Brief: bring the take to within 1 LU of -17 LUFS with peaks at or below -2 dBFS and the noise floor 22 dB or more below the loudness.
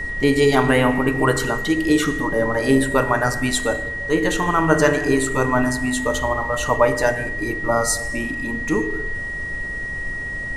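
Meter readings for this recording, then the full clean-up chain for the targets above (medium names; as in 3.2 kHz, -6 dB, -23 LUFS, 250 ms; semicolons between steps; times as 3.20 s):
steady tone 1.9 kHz; tone level -26 dBFS; noise floor -28 dBFS; noise floor target -42 dBFS; loudness -20.0 LUFS; peak level -3.0 dBFS; loudness target -17.0 LUFS
-> band-stop 1.9 kHz, Q 30; noise print and reduce 14 dB; trim +3 dB; peak limiter -2 dBFS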